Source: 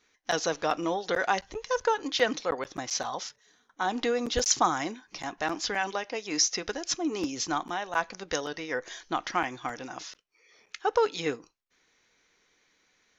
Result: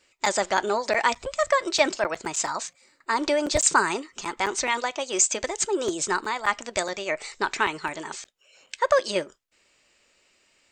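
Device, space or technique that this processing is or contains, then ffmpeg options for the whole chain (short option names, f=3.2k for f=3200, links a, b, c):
nightcore: -af "asetrate=54243,aresample=44100,volume=4.5dB"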